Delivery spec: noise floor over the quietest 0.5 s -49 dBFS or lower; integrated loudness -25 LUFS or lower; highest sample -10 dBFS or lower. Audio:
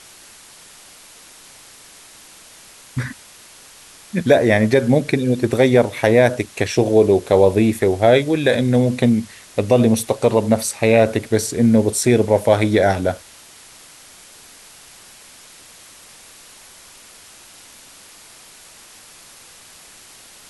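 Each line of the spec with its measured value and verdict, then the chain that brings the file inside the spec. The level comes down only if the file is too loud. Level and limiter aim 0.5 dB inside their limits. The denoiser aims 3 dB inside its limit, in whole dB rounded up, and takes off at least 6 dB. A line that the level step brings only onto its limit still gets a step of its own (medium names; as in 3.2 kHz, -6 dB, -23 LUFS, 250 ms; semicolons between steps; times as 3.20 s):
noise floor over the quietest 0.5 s -44 dBFS: fail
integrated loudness -16.5 LUFS: fail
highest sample -2.0 dBFS: fail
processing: trim -9 dB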